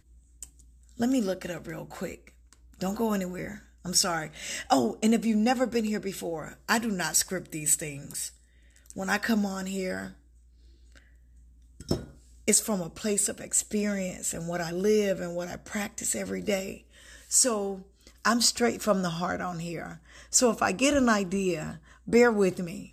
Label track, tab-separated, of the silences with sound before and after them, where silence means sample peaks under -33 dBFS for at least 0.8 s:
10.070000	11.800000	silence